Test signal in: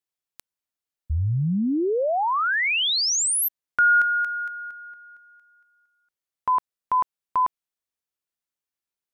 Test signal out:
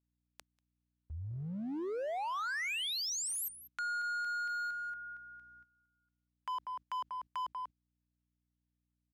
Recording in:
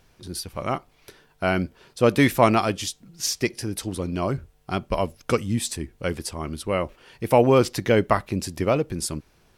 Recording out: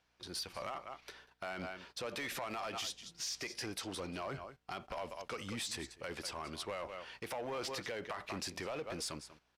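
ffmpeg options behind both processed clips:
-filter_complex "[0:a]acrossover=split=540 6500:gain=0.224 1 0.224[a][b][c];[a][b][c]amix=inputs=3:normalize=0,asplit=2[d][e];[e]aecho=0:1:191:0.119[f];[d][f]amix=inputs=2:normalize=0,acompressor=threshold=-30dB:ratio=12:attack=0.4:release=84:knee=1:detection=peak,aeval=exprs='val(0)+0.000501*(sin(2*PI*60*n/s)+sin(2*PI*2*60*n/s)/2+sin(2*PI*3*60*n/s)/3+sin(2*PI*4*60*n/s)/4+sin(2*PI*5*60*n/s)/5)':c=same,lowshelf=f=160:g=-6.5,asplit=2[g][h];[h]aeval=exprs='0.0133*(abs(mod(val(0)/0.0133+3,4)-2)-1)':c=same,volume=-6dB[i];[g][i]amix=inputs=2:normalize=0,agate=range=-12dB:threshold=-55dB:ratio=3:release=45:detection=rms,aresample=32000,aresample=44100,volume=-4dB"

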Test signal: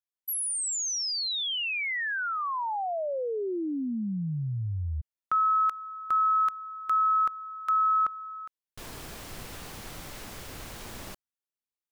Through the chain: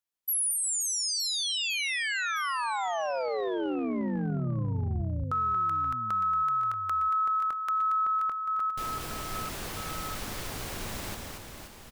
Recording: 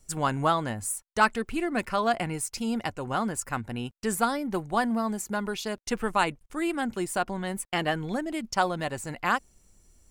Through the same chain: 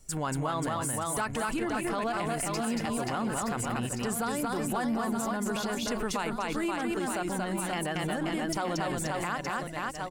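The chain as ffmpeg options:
-af "aecho=1:1:230|529|917.7|1423|2080:0.631|0.398|0.251|0.158|0.1,acompressor=threshold=-28dB:ratio=6:attack=0.25:release=85:knee=1:detection=peak,volume=3dB"

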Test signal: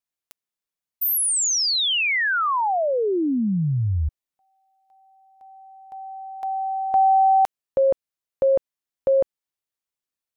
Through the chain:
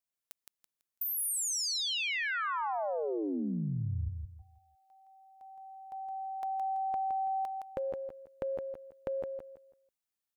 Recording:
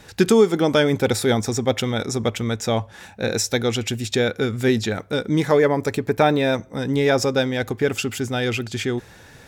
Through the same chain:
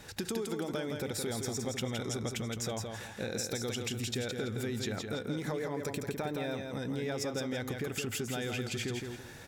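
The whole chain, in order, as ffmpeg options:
-filter_complex "[0:a]highshelf=f=7.5k:g=4.5,acompressor=threshold=-28dB:ratio=16:attack=10:release=85:knee=6:detection=rms,asplit=2[a][b];[b]aecho=0:1:166|332|498|664:0.562|0.163|0.0473|0.0137[c];[a][c]amix=inputs=2:normalize=0,volume=-5dB"

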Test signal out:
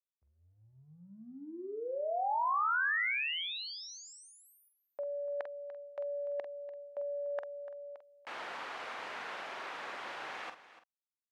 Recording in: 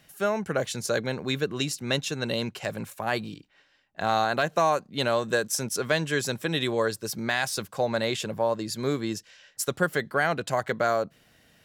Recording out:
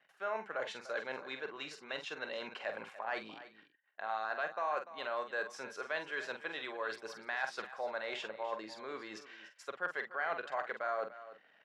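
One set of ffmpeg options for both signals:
-filter_complex "[0:a]areverse,acompressor=threshold=-32dB:ratio=16,areverse,asoftclip=type=hard:threshold=-25.5dB,anlmdn=0.0001,highpass=760,lowpass=2.1k,asplit=2[a][b];[b]adelay=46,volume=-8dB[c];[a][c]amix=inputs=2:normalize=0,asplit=2[d][e];[e]aecho=0:1:293:0.178[f];[d][f]amix=inputs=2:normalize=0,volume=3.5dB"

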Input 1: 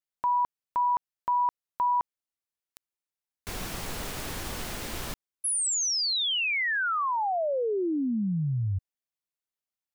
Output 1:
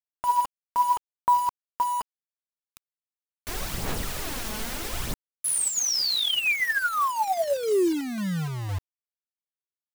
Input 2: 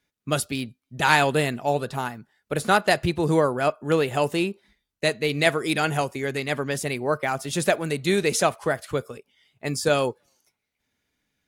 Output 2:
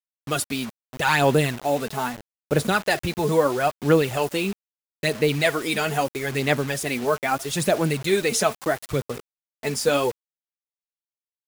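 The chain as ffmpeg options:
-filter_complex "[0:a]asplit=2[a][b];[b]alimiter=limit=-15.5dB:level=0:latency=1:release=41,volume=2dB[c];[a][c]amix=inputs=2:normalize=0,aphaser=in_gain=1:out_gain=1:delay=4.7:decay=0.54:speed=0.77:type=sinusoidal,acrusher=bits=4:mix=0:aa=0.000001,volume=-6.5dB"

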